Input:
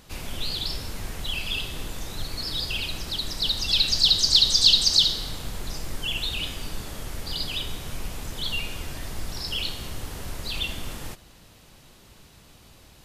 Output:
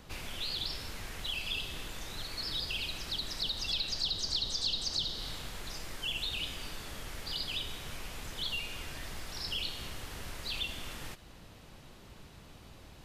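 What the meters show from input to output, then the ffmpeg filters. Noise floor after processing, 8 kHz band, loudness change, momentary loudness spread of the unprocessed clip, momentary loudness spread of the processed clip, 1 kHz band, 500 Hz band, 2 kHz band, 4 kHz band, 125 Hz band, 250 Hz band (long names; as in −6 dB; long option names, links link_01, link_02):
−54 dBFS, −12.0 dB, −12.5 dB, 20 LU, 22 LU, −6.0 dB, −7.5 dB, −6.0 dB, −11.5 dB, −10.0 dB, −9.0 dB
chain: -filter_complex "[0:a]acrossover=split=330|1400|3300[link_01][link_02][link_03][link_04];[link_01]acompressor=threshold=-42dB:ratio=4[link_05];[link_02]acompressor=threshold=-52dB:ratio=4[link_06];[link_03]acompressor=threshold=-39dB:ratio=4[link_07];[link_04]acompressor=threshold=-31dB:ratio=4[link_08];[link_05][link_06][link_07][link_08]amix=inputs=4:normalize=0,highshelf=frequency=4200:gain=-9"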